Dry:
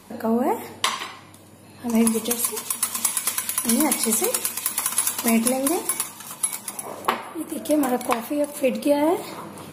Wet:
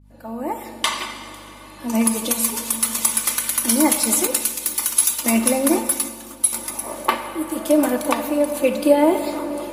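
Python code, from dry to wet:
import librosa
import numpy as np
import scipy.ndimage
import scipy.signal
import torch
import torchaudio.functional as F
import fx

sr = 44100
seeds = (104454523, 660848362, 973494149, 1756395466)

y = fx.fade_in_head(x, sr, length_s=0.99)
y = scipy.signal.sosfilt(scipy.signal.butter(2, 230.0, 'highpass', fs=sr, output='sos'), y)
y = y + 0.61 * np.pad(y, (int(3.4 * sr / 1000.0), 0))[:len(y)]
y = fx.add_hum(y, sr, base_hz=50, snr_db=28)
y = fx.rev_plate(y, sr, seeds[0], rt60_s=4.2, hf_ratio=0.65, predelay_ms=0, drr_db=8.5)
y = fx.band_widen(y, sr, depth_pct=70, at=(4.27, 6.53))
y = F.gain(torch.from_numpy(y), 1.5).numpy()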